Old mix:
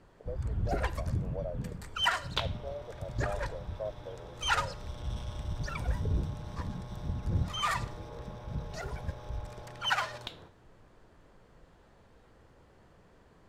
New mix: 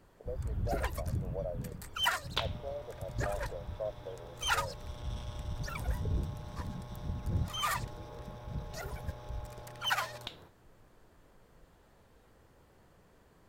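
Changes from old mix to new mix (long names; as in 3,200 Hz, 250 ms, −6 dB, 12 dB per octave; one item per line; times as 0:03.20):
first sound: remove high-frequency loss of the air 54 metres
reverb: off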